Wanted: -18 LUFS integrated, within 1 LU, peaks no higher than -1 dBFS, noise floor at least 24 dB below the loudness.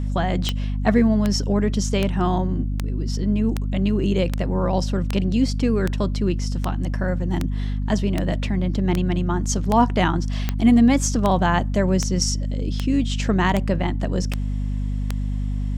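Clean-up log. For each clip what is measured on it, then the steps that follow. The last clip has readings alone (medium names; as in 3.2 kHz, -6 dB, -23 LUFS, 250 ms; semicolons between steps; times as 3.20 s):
clicks found 20; hum 50 Hz; highest harmonic 250 Hz; hum level -21 dBFS; loudness -22.0 LUFS; peak level -5.0 dBFS; loudness target -18.0 LUFS
-> de-click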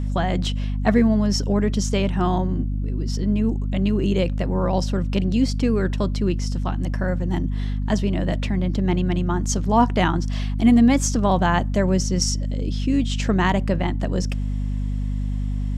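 clicks found 0; hum 50 Hz; highest harmonic 250 Hz; hum level -21 dBFS
-> de-hum 50 Hz, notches 5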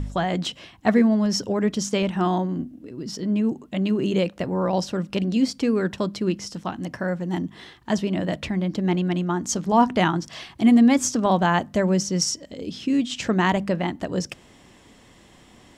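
hum not found; loudness -23.0 LUFS; peak level -6.5 dBFS; loudness target -18.0 LUFS
-> trim +5 dB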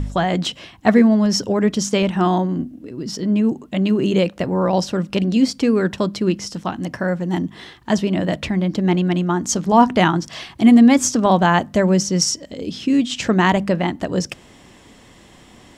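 loudness -18.0 LUFS; peak level -1.5 dBFS; noise floor -47 dBFS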